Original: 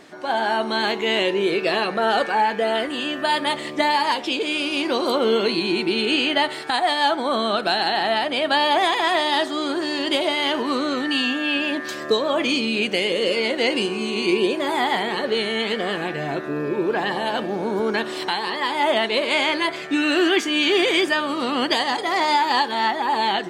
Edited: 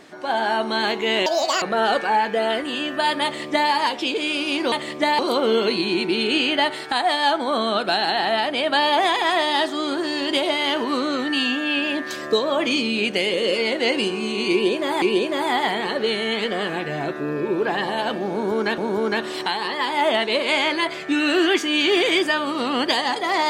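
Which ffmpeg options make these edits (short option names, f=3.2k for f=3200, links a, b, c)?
-filter_complex "[0:a]asplit=7[a][b][c][d][e][f][g];[a]atrim=end=1.264[h];[b]atrim=start=1.26:end=1.87,asetpts=PTS-STARTPTS,asetrate=74970,aresample=44100,atrim=end_sample=15824,asetpts=PTS-STARTPTS[i];[c]atrim=start=1.866:end=4.972[j];[d]atrim=start=3.488:end=3.962[k];[e]atrim=start=4.968:end=14.802[l];[f]atrim=start=14.298:end=18.062[m];[g]atrim=start=17.598[n];[h][i]acrossfade=d=0.004:c1=hsin:c2=hsin[o];[o][j]acrossfade=d=0.004:c1=hsin:c2=hsin[p];[p][k]acrossfade=d=0.004:c1=hsin:c2=hsin[q];[q][l]acrossfade=d=0.004:c1=hsin:c2=hsin[r];[r][m]acrossfade=d=0.004:c1=hsin:c2=hsin[s];[s][n]acrossfade=d=0.004:c1=hsin:c2=hsin"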